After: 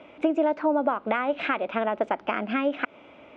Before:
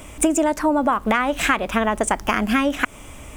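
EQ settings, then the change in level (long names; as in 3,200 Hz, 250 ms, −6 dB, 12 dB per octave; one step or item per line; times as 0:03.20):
high-frequency loss of the air 68 metres
loudspeaker in its box 410–3,500 Hz, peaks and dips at 430 Hz −4 dB, 790 Hz −4 dB, 1,100 Hz −9 dB, 1,800 Hz −9 dB, 3,100 Hz −3 dB
high-shelf EQ 2,100 Hz −9 dB
+1.5 dB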